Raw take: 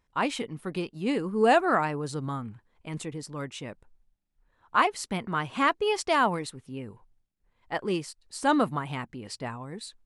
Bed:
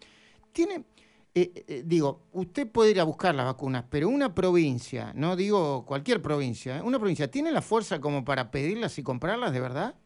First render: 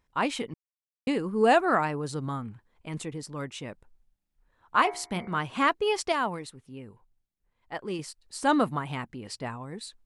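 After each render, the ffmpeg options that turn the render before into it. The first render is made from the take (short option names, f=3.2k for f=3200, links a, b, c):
-filter_complex "[0:a]asettb=1/sr,asplit=3[a][b][c];[a]atrim=end=4.824[d];[b]atrim=start=4.82:end=5.39,asetpts=PTS-STARTPTS,afade=t=in:d=0.004:c=qsin,afade=t=out:st=0.566:d=0.004:c=qsin,bandreject=f=64.68:t=h:w=4,bandreject=f=129.36:t=h:w=4,bandreject=f=194.04:t=h:w=4,bandreject=f=258.72:t=h:w=4,bandreject=f=323.4:t=h:w=4,bandreject=f=388.08:t=h:w=4,bandreject=f=452.76:t=h:w=4,bandreject=f=517.44:t=h:w=4,bandreject=f=582.12:t=h:w=4,bandreject=f=646.8:t=h:w=4,bandreject=f=711.48:t=h:w=4,bandreject=f=776.16:t=h:w=4,bandreject=f=840.84:t=h:w=4,bandreject=f=905.52:t=h:w=4,bandreject=f=970.2:t=h:w=4,bandreject=f=1.03488k:t=h:w=4,bandreject=f=1.09956k:t=h:w=4,bandreject=f=1.16424k:t=h:w=4,bandreject=f=1.22892k:t=h:w=4,bandreject=f=1.2936k:t=h:w=4,bandreject=f=1.35828k:t=h:w=4,bandreject=f=1.42296k:t=h:w=4,bandreject=f=1.48764k:t=h:w=4,bandreject=f=1.55232k:t=h:w=4,bandreject=f=1.617k:t=h:w=4,bandreject=f=1.68168k:t=h:w=4,bandreject=f=1.74636k:t=h:w=4,bandreject=f=1.81104k:t=h:w=4,bandreject=f=1.87572k:t=h:w=4,bandreject=f=1.9404k:t=h:w=4,bandreject=f=2.00508k:t=h:w=4,bandreject=f=2.06976k:t=h:w=4,bandreject=f=2.13444k:t=h:w=4,bandreject=f=2.19912k:t=h:w=4,bandreject=f=2.2638k:t=h:w=4[e];[c]atrim=start=5.386[f];[d][e]acrossfade=d=0.004:c1=hsin:c2=qsin[g];[g][f]acrossfade=d=0.004:c1=qsin:c2=hsin,asplit=5[h][i][j][k][l];[h]atrim=end=0.54,asetpts=PTS-STARTPTS,afade=t=out:st=0.536:d=0.004:c=hsin[m];[i]atrim=start=0.54:end=1.07,asetpts=PTS-STARTPTS,volume=0[n];[j]atrim=start=1.07:end=6.122,asetpts=PTS-STARTPTS,afade=t=in:d=0.004:c=hsin[o];[k]atrim=start=6.118:end=7.992,asetpts=PTS-STARTPTS,volume=-5dB[p];[l]atrim=start=7.988[q];[m][n][o]concat=n=3:v=0:a=1[r];[r][p]acrossfade=d=0.004:c1=hsin:c2=hsin[s];[s][q]acrossfade=d=0.004:c1=hsin:c2=hsin"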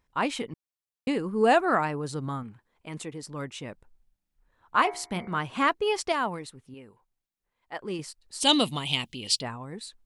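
-filter_complex "[0:a]asettb=1/sr,asplit=3[a][b][c];[a]atrim=end=2.434[d];[b]atrim=start=2.43:end=3.23,asetpts=PTS-STARTPTS,afade=t=in:d=0.004:c=qsin,afade=t=out:st=0.796:d=0.004:c=qsin,lowshelf=f=120:g=-10.5[e];[c]atrim=start=3.226[f];[d][e]acrossfade=d=0.004:c1=hsin:c2=qsin[g];[g][f]acrossfade=d=0.004:c1=qsin:c2=hsin,asettb=1/sr,asplit=3[h][i][j];[h]atrim=end=6.744[k];[i]atrim=start=6.74:end=7.81,asetpts=PTS-STARTPTS,afade=t=in:d=0.004:c=qsin,afade=t=out:st=1.066:d=0.004:c=qsin,lowshelf=f=210:g=-12[l];[j]atrim=start=7.806[m];[k][l]acrossfade=d=0.004:c1=hsin:c2=qsin[n];[n][m]acrossfade=d=0.004:c1=qsin:c2=hsin,asplit=3[o][p][q];[o]afade=t=out:st=8.4:d=0.02[r];[p]highshelf=f=2.2k:t=q:w=3:g=12.5,afade=t=in:st=8.4:d=0.02,afade=t=out:st=9.41:d=0.02[s];[q]afade=t=in:st=9.41:d=0.02[t];[r][s][t]amix=inputs=3:normalize=0"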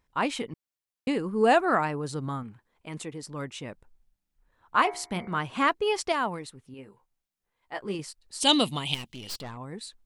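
-filter_complex "[0:a]asettb=1/sr,asplit=3[a][b][c];[a]atrim=end=6.774[d];[b]atrim=start=6.77:end=7.95,asetpts=PTS-STARTPTS,afade=t=in:d=0.004:c=qsin,afade=t=out:st=1.176:d=0.004:c=qsin,asplit=2[e][f];[f]adelay=15,volume=-6dB[g];[e][g]amix=inputs=2:normalize=0,atrim=end_sample=52038[h];[c]atrim=start=7.946[i];[d][h]acrossfade=d=0.004:c1=hsin:c2=qsin[j];[j][i]acrossfade=d=0.004:c1=qsin:c2=hsin,asettb=1/sr,asplit=3[k][l][m];[k]atrim=end=8.944[n];[l]atrim=start=8.94:end=9.57,asetpts=PTS-STARTPTS,afade=t=in:d=0.004:c=qsin,afade=t=out:st=0.626:d=0.004:c=qsin,aeval=exprs='(tanh(50.1*val(0)+0.6)-tanh(0.6))/50.1':c=same[o];[m]atrim=start=9.566[p];[n][o]acrossfade=d=0.004:c1=hsin:c2=qsin[q];[q][p]acrossfade=d=0.004:c1=qsin:c2=hsin"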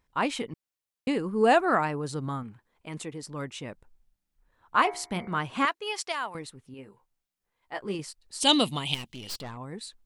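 -filter_complex "[0:a]asettb=1/sr,asplit=3[a][b][c];[a]atrim=end=5.654[d];[b]atrim=start=5.65:end=6.35,asetpts=PTS-STARTPTS,afade=t=in:d=0.004:c=qsin,afade=t=out:st=0.696:d=0.004:c=qsin,highpass=f=1.4k:p=1[e];[c]atrim=start=6.346[f];[d][e]acrossfade=d=0.004:c1=hsin:c2=qsin[g];[g][f]acrossfade=d=0.004:c1=qsin:c2=hsin"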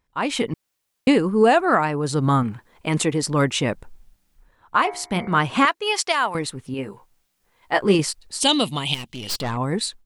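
-af "dynaudnorm=f=240:g=3:m=16.5dB,alimiter=limit=-6dB:level=0:latency=1:release=394"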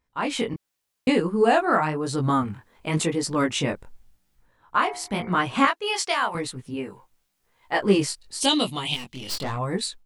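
-af "flanger=delay=16:depth=6.8:speed=0.92"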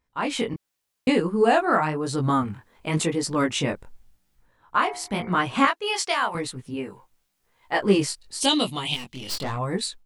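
-af anull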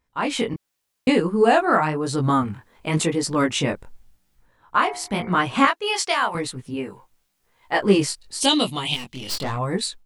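-af "volume=2.5dB"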